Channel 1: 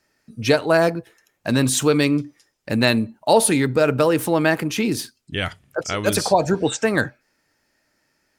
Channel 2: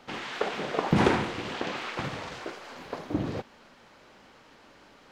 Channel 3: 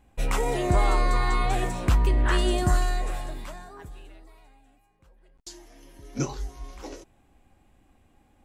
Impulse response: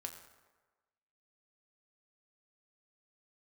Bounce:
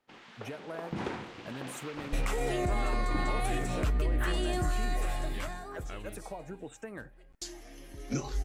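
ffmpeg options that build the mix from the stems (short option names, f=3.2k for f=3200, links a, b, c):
-filter_complex "[0:a]equalizer=f=4.6k:t=o:w=0.77:g=-15,acompressor=threshold=-21dB:ratio=6,volume=-17.5dB[a];[1:a]agate=range=-9dB:threshold=-42dB:ratio=16:detection=peak,dynaudnorm=f=340:g=7:m=10dB,volume=-16.5dB[b];[2:a]equalizer=f=2.2k:t=o:w=0.77:g=2.5,bandreject=f=960:w=10,alimiter=limit=-23.5dB:level=0:latency=1:release=236,adelay=1950,volume=1.5dB[c];[a][b][c]amix=inputs=3:normalize=0"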